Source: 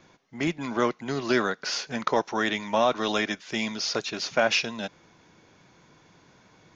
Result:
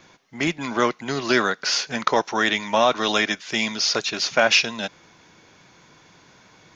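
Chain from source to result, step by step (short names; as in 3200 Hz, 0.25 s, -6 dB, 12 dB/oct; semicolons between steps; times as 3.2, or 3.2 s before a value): tilt shelf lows -3 dB; gain +5 dB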